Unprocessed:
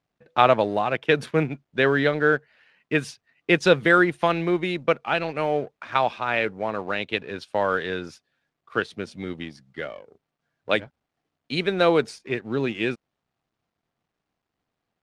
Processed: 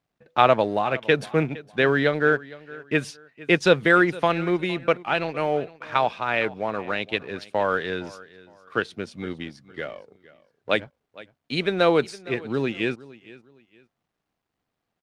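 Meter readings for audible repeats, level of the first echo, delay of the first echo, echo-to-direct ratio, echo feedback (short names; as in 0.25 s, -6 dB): 2, -20.0 dB, 0.462 s, -19.5 dB, 29%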